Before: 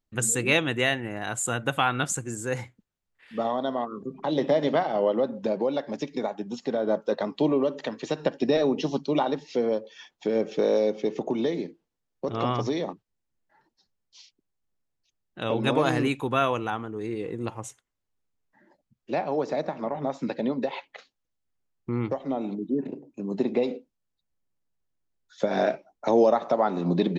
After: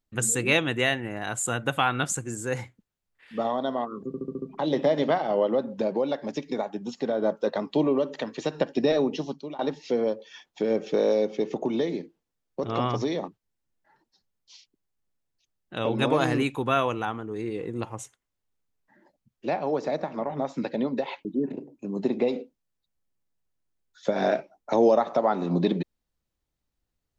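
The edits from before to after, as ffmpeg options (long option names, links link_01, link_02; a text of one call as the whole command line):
ffmpeg -i in.wav -filter_complex "[0:a]asplit=8[link_01][link_02][link_03][link_04][link_05][link_06][link_07][link_08];[link_01]atrim=end=4.142[link_09];[link_02]atrim=start=4.068:end=4.142[link_10];[link_03]atrim=start=4.068:end=4.142[link_11];[link_04]atrim=start=4.068:end=4.142[link_12];[link_05]atrim=start=4.068:end=4.142[link_13];[link_06]atrim=start=4.068:end=9.24,asetpts=PTS-STARTPTS,afade=type=out:start_time=4.572:duration=0.6:silence=0.0891251[link_14];[link_07]atrim=start=9.24:end=20.902,asetpts=PTS-STARTPTS,afade=type=in:duration=0.004:curve=hsin:silence=0.0891251[link_15];[link_08]atrim=start=22.598[link_16];[link_09][link_10]acrossfade=duration=0.004:curve1=hsin:curve2=hsin[link_17];[link_17][link_11]acrossfade=duration=0.004:curve1=hsin:curve2=hsin[link_18];[link_18][link_12]acrossfade=duration=0.004:curve1=hsin:curve2=hsin[link_19];[link_19][link_13]acrossfade=duration=0.004:curve1=hsin:curve2=hsin[link_20];[link_14][link_15]concat=n=2:v=0:a=1[link_21];[link_20][link_21]acrossfade=duration=0.004:curve1=hsin:curve2=hsin[link_22];[link_22][link_16]acrossfade=duration=0.004:curve1=hsin:curve2=hsin" out.wav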